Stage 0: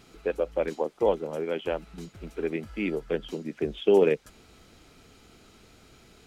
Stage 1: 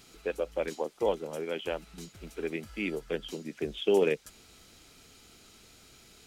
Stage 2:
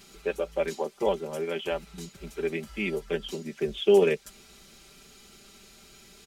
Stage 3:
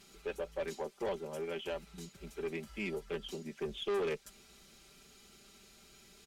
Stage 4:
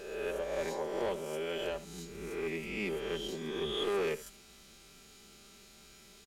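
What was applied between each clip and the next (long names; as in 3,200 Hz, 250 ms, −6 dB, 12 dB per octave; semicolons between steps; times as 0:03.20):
high-shelf EQ 2,800 Hz +11.5 dB; level −5 dB
comb filter 5.1 ms, depth 74%; level +1.5 dB
tube saturation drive 24 dB, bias 0.2; level −6.5 dB
peak hold with a rise ahead of every peak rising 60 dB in 1.23 s; single-tap delay 74 ms −16.5 dB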